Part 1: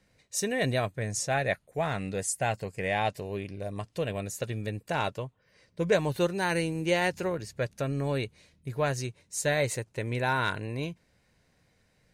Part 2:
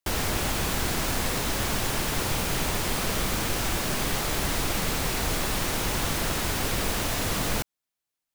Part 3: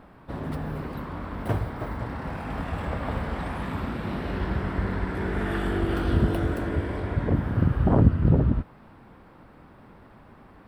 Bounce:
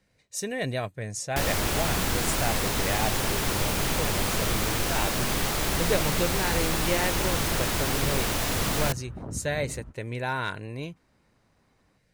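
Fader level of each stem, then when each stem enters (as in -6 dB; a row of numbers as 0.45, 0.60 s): -2.0, +0.5, -18.5 dB; 0.00, 1.30, 1.30 s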